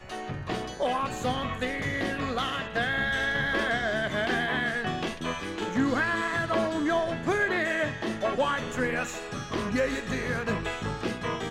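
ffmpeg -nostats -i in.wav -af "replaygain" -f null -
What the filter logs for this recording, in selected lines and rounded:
track_gain = +10.3 dB
track_peak = 0.137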